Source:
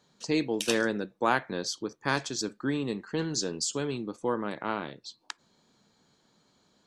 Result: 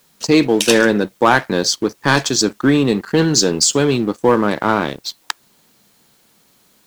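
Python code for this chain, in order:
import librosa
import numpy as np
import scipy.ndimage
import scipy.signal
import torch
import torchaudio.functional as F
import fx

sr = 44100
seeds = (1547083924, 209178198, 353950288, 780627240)

p1 = fx.rider(x, sr, range_db=10, speed_s=2.0)
p2 = x + F.gain(torch.from_numpy(p1), -0.5).numpy()
p3 = fx.leveller(p2, sr, passes=2)
p4 = fx.quant_dither(p3, sr, seeds[0], bits=10, dither='triangular')
y = F.gain(torch.from_numpy(p4), 3.0).numpy()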